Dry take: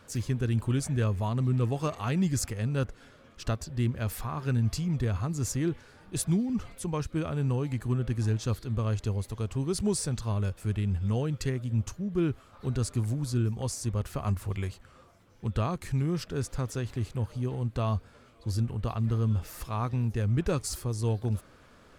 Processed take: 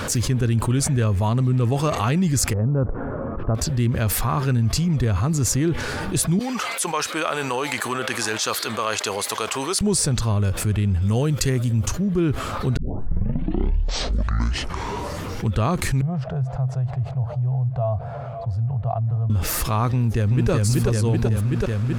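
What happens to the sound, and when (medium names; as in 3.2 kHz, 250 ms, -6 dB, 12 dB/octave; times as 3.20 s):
2.53–3.55 s: low-pass 1.1 kHz 24 dB/octave
6.39–9.81 s: high-pass 810 Hz
11.02–11.88 s: treble shelf 6.1 kHz +10.5 dB
12.77 s: tape start 2.74 s
16.01–19.30 s: two resonant band-passes 300 Hz, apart 2.4 oct
19.88–20.51 s: echo throw 380 ms, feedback 65%, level -0.5 dB
whole clip: level flattener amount 70%; trim +3.5 dB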